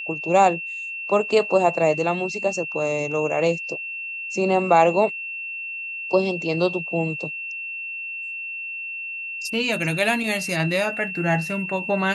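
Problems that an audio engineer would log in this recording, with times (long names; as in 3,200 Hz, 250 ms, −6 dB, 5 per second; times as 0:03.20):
whistle 2,700 Hz −29 dBFS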